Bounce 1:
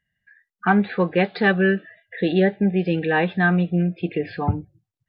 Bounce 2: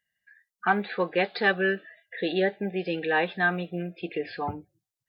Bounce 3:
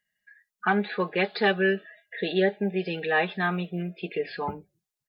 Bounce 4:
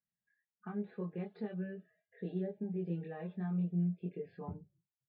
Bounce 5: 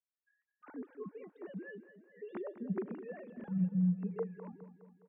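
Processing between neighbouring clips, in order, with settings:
tone controls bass -14 dB, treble +8 dB; trim -3.5 dB
comb 4.8 ms, depth 54%
compression, threshold -24 dBFS, peak gain reduction 7 dB; band-pass filter 140 Hz, Q 1.3; chorus voices 4, 0.42 Hz, delay 23 ms, depth 1.3 ms; trim +1 dB
formants replaced by sine waves; on a send: feedback delay 207 ms, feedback 54%, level -13 dB

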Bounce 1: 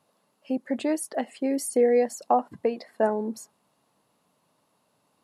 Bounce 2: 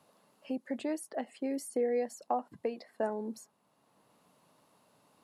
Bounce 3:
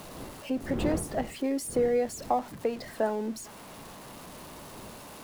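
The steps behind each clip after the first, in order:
three bands compressed up and down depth 40%; trim -9 dB
jump at every zero crossing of -46 dBFS; wind noise 330 Hz -46 dBFS; trim +4.5 dB

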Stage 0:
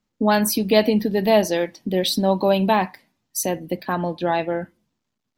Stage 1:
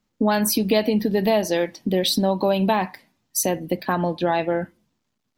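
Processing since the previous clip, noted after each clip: compression 3:1, threshold -20 dBFS, peak gain reduction 8 dB; trim +3 dB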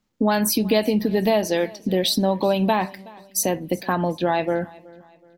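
feedback delay 373 ms, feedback 40%, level -22.5 dB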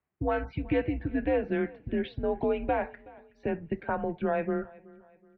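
mistuned SSB -150 Hz 270–2600 Hz; trim -6.5 dB

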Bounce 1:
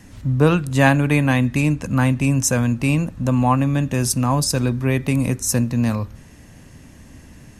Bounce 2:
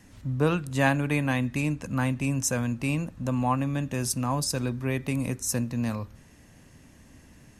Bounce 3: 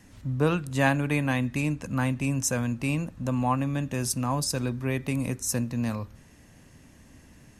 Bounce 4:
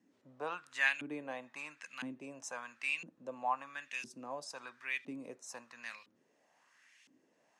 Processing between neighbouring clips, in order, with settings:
bass shelf 200 Hz -3.5 dB; trim -7.5 dB
no audible change
LFO band-pass saw up 0.99 Hz 260–2900 Hz; Chebyshev band-pass 140–7400 Hz, order 2; tilt EQ +4.5 dB/octave; trim -2.5 dB

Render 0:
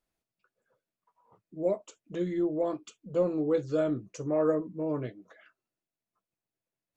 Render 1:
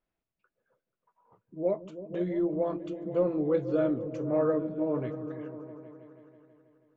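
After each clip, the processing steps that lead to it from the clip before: low-pass 2.8 kHz 12 dB/octave; delay with an opening low-pass 162 ms, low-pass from 200 Hz, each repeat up 1 oct, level -6 dB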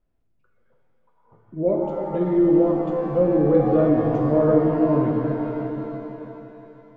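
tilt EQ -3 dB/octave; pitch-shifted reverb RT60 2.5 s, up +7 st, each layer -8 dB, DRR 1 dB; trim +3 dB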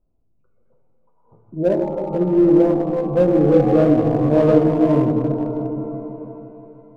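local Wiener filter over 25 samples; trim +4 dB

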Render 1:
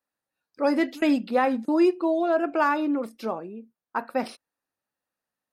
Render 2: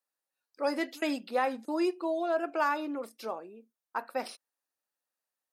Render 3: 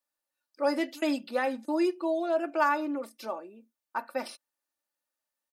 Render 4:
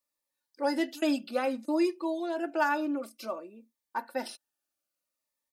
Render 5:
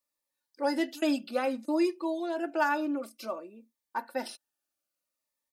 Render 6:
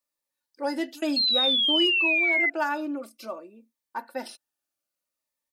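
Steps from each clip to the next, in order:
tone controls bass -15 dB, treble +6 dB; trim -5.5 dB
comb 3.4 ms, depth 53%
Shepard-style phaser falling 0.58 Hz; trim +1.5 dB
no audible change
painted sound fall, 1.16–2.50 s, 2–4.3 kHz -23 dBFS

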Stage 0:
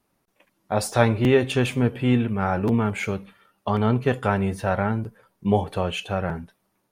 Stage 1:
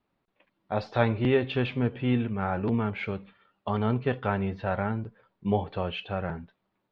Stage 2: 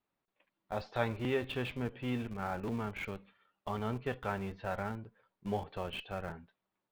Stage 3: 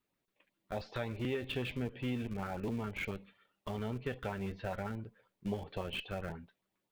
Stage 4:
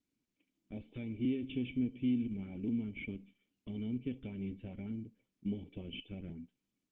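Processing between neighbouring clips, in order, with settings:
steep low-pass 4.2 kHz 36 dB/octave; trim -5.5 dB
bass shelf 440 Hz -6 dB; in parallel at -10 dB: Schmitt trigger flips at -32.5 dBFS; on the sum: trim -7 dB
compression 4:1, threshold -36 dBFS, peak gain reduction 9 dB; LFO notch saw up 7.4 Hz 620–1700 Hz; trim +3.5 dB
cascade formant filter i; trim +8 dB; Opus 24 kbps 48 kHz

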